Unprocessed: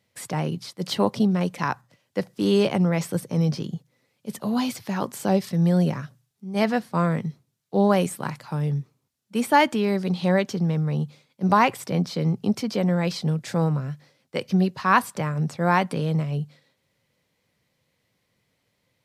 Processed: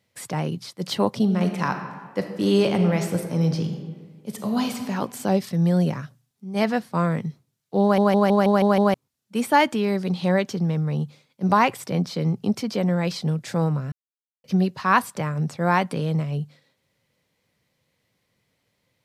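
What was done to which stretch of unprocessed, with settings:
0:01.21–0:04.86: thrown reverb, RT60 1.6 s, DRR 5.5 dB
0:07.82: stutter in place 0.16 s, 7 plays
0:13.92–0:14.44: silence

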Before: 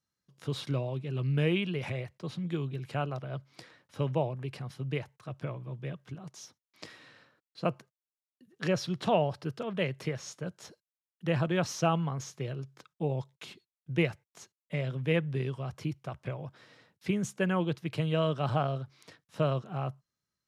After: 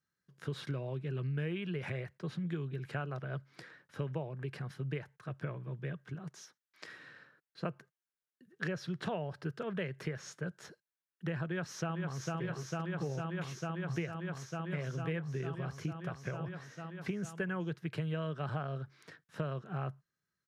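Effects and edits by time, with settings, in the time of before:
0:06.42–0:06.88: high-pass filter 670 Hz 6 dB per octave
0:11.44–0:12.34: delay throw 450 ms, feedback 85%, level −5 dB
whole clip: graphic EQ with 15 bands 160 Hz +7 dB, 400 Hz +6 dB, 1,600 Hz +12 dB; downward compressor 6 to 1, threshold −28 dBFS; level −5.5 dB

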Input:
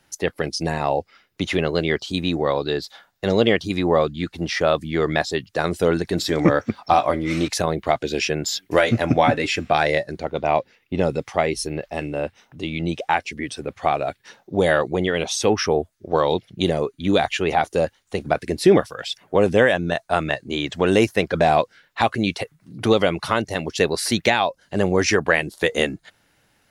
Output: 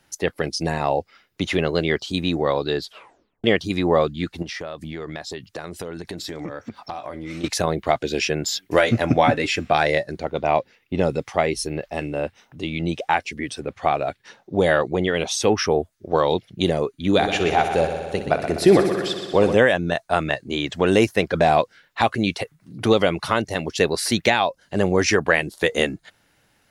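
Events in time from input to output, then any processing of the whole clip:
0:02.82: tape stop 0.62 s
0:04.42–0:07.44: downward compressor 8 to 1, threshold −28 dBFS
0:13.60–0:15.08: high-shelf EQ 9,200 Hz −8 dB
0:17.10–0:19.55: echo machine with several playback heads 62 ms, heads first and second, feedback 68%, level −12 dB

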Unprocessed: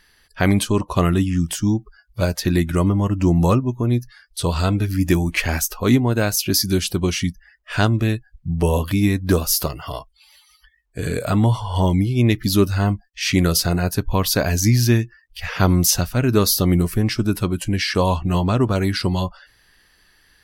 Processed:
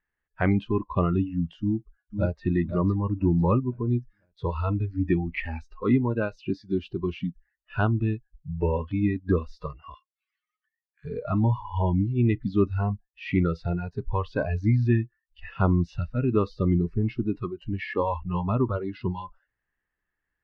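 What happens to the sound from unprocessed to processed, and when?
0:01.60–0:02.44: delay throw 500 ms, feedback 45%, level −6 dB
0:09.94–0:11.05: Butterworth high-pass 1,100 Hz 96 dB per octave
whole clip: noise reduction from a noise print of the clip's start 19 dB; low-pass filter 2,200 Hz 24 dB per octave; level −5.5 dB

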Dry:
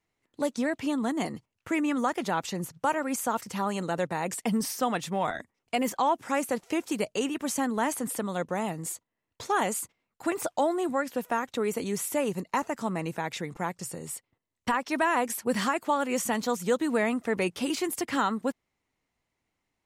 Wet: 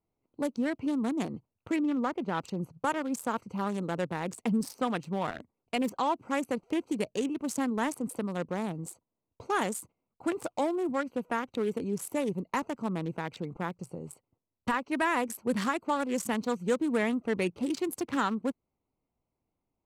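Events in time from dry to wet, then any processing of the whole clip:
0:01.76–0:02.35: low-pass filter 1,900 Hz 6 dB per octave
whole clip: adaptive Wiener filter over 25 samples; dynamic equaliser 710 Hz, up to −5 dB, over −42 dBFS, Q 1.6

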